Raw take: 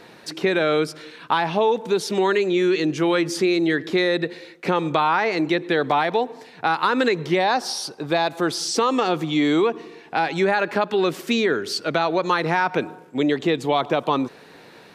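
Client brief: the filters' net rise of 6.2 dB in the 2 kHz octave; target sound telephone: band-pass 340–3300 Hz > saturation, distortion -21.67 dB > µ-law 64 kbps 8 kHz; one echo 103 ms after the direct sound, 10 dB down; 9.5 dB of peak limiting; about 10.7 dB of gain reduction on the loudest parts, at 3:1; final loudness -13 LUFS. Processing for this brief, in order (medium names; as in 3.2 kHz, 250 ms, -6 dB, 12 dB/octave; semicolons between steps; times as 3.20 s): peaking EQ 2 kHz +8.5 dB; compression 3:1, threshold -28 dBFS; peak limiter -19.5 dBFS; band-pass 340–3300 Hz; delay 103 ms -10 dB; saturation -21.5 dBFS; trim +20 dB; µ-law 64 kbps 8 kHz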